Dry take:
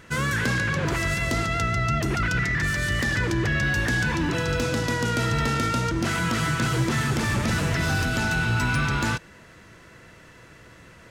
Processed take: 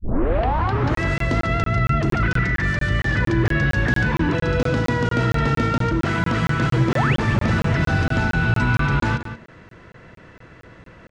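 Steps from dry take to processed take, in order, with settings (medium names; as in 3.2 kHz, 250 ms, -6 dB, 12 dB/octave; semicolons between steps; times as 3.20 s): tape start-up on the opening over 1.01 s; de-hum 75.92 Hz, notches 5; painted sound rise, 6.92–7.17 s, 350–3800 Hz -27 dBFS; tape spacing loss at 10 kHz 23 dB; echo from a far wall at 31 m, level -11 dB; crackling interface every 0.23 s, samples 1024, zero, from 0.95 s; trim +6 dB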